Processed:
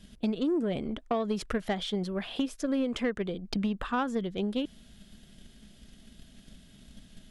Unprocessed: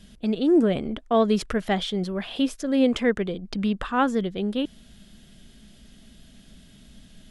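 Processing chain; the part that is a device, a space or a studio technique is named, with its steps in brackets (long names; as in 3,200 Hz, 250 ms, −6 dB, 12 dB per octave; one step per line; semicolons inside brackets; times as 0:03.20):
drum-bus smash (transient designer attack +8 dB, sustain +1 dB; downward compressor 10 to 1, threshold −19 dBFS, peak gain reduction 9 dB; soft clipping −15.5 dBFS, distortion −20 dB)
level −4.5 dB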